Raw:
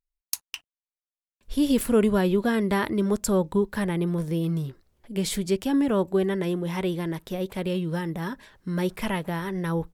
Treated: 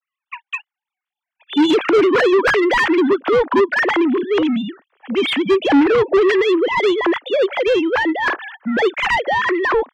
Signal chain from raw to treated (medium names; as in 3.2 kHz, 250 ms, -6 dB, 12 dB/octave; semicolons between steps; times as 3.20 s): formants replaced by sine waves; tilt EQ +1.5 dB/octave; overdrive pedal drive 28 dB, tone 2.2 kHz, clips at -8.5 dBFS; trim +3 dB